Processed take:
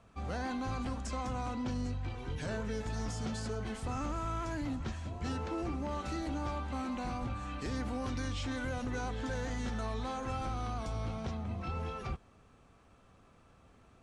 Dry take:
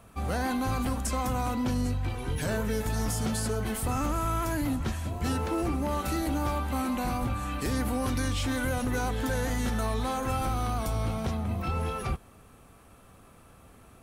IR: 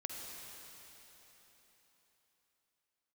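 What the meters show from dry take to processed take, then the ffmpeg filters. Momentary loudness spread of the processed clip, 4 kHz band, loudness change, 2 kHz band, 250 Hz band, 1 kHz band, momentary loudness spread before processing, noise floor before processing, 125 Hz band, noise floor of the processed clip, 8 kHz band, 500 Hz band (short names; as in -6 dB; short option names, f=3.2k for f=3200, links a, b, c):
3 LU, -7.5 dB, -7.5 dB, -7.5 dB, -7.5 dB, -7.5 dB, 3 LU, -54 dBFS, -7.5 dB, -62 dBFS, -12.5 dB, -7.5 dB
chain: -af "lowpass=f=7.1k:w=0.5412,lowpass=f=7.1k:w=1.3066,volume=-7.5dB"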